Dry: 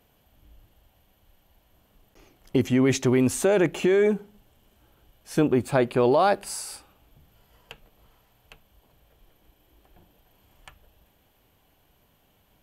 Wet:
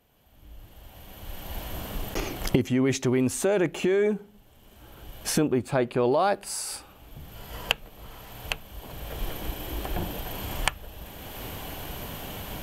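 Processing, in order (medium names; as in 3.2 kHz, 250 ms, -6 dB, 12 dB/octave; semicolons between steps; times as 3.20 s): recorder AGC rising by 19 dB/s; 5.58–6.06 s: treble shelf 8.8 kHz -6 dB; trim -3 dB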